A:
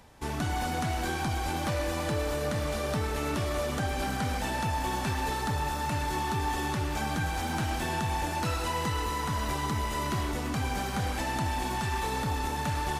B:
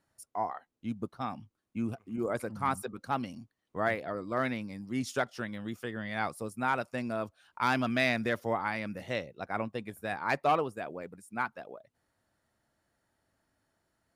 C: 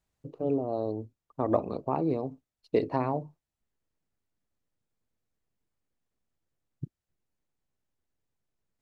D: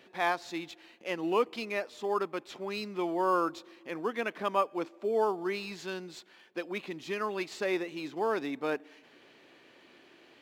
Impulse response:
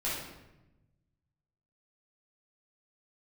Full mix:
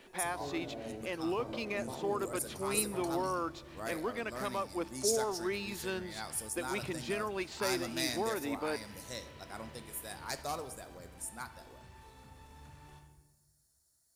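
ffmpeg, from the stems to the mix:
-filter_complex "[0:a]alimiter=level_in=10.5dB:limit=-24dB:level=0:latency=1,volume=-10.5dB,volume=-19dB,asplit=2[a][b];[b]volume=-3.5dB[c];[1:a]aexciter=amount=8.6:drive=9.3:freq=4.4k,volume=-13dB,asplit=2[d][e];[e]volume=-14.5dB[f];[2:a]acompressor=threshold=-31dB:ratio=6,volume=-12.5dB,asplit=2[g][h];[h]volume=-5.5dB[i];[3:a]alimiter=level_in=2dB:limit=-24dB:level=0:latency=1:release=316,volume=-2dB,volume=0.5dB[j];[4:a]atrim=start_sample=2205[k];[c][f][i]amix=inputs=3:normalize=0[l];[l][k]afir=irnorm=-1:irlink=0[m];[a][d][g][j][m]amix=inputs=5:normalize=0,highshelf=f=11k:g=-3.5"

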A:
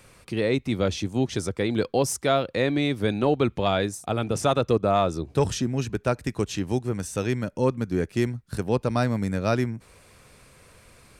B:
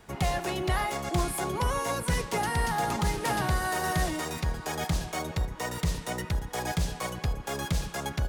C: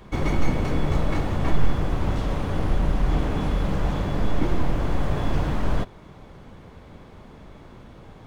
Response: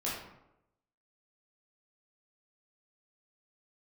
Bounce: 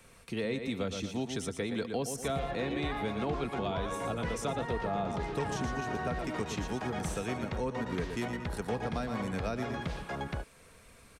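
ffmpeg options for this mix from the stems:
-filter_complex "[0:a]bandreject=f=4.8k:w=15,aecho=1:1:4.4:0.31,volume=-5dB,asplit=2[a][b];[b]volume=-8.5dB[c];[1:a]lowpass=2.7k,adelay=2150,volume=-1dB[d];[c]aecho=0:1:116|232|348|464|580:1|0.34|0.116|0.0393|0.0134[e];[a][d][e]amix=inputs=3:normalize=0,acrossover=split=260|540[f][g][h];[f]acompressor=threshold=-37dB:ratio=4[i];[g]acompressor=threshold=-40dB:ratio=4[j];[h]acompressor=threshold=-37dB:ratio=4[k];[i][j][k]amix=inputs=3:normalize=0"

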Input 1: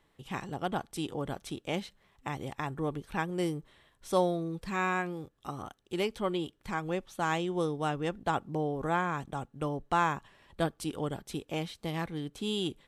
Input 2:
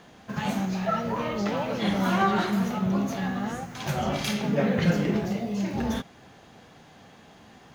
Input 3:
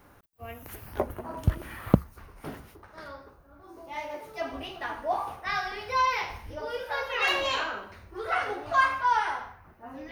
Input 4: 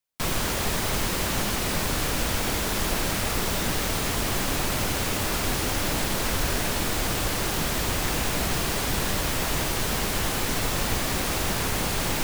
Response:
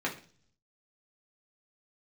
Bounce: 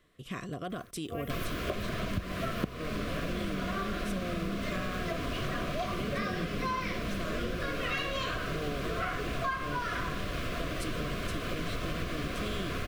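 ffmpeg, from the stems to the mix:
-filter_complex "[0:a]alimiter=level_in=3.5dB:limit=-24dB:level=0:latency=1,volume=-3.5dB,volume=2dB[a];[1:a]lowpass=4.6k,adelay=1550,volume=-6dB[b];[2:a]adelay=700,volume=0.5dB[c];[3:a]acrossover=split=3700[d][e];[e]acompressor=threshold=-48dB:ratio=4:attack=1:release=60[f];[d][f]amix=inputs=2:normalize=0,bandreject=f=1.9k:w=14,adelay=1100,volume=-3.5dB[g];[a][b][c][g]amix=inputs=4:normalize=0,asuperstop=centerf=860:order=12:qfactor=3.5,acompressor=threshold=-30dB:ratio=6"

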